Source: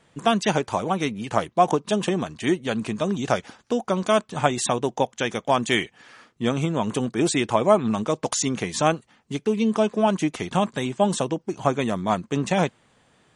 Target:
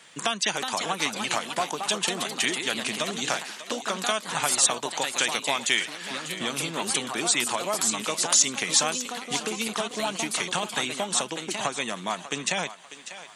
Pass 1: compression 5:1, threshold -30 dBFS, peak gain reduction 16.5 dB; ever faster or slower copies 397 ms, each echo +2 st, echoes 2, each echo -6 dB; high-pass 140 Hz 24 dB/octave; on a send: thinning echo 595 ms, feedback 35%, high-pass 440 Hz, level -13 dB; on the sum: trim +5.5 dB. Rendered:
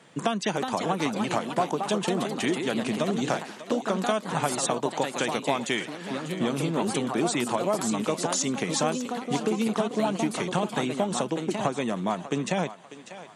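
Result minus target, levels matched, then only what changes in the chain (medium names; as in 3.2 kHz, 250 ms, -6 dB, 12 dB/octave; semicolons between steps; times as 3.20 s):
1 kHz band +3.0 dB
add after compression: tilt shelf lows -9.5 dB, about 990 Hz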